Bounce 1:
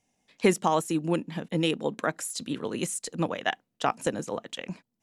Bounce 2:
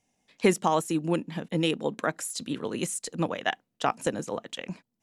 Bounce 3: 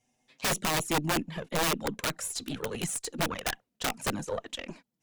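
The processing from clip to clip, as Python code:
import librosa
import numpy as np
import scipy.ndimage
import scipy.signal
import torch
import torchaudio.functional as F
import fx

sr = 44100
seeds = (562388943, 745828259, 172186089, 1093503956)

y1 = x
y2 = fx.cheby_harmonics(y1, sr, harmonics=(5, 8), levels_db=(-23, -22), full_scale_db=-9.0)
y2 = fx.env_flanger(y2, sr, rest_ms=8.1, full_db=-19.5)
y2 = (np.mod(10.0 ** (21.5 / 20.0) * y2 + 1.0, 2.0) - 1.0) / 10.0 ** (21.5 / 20.0)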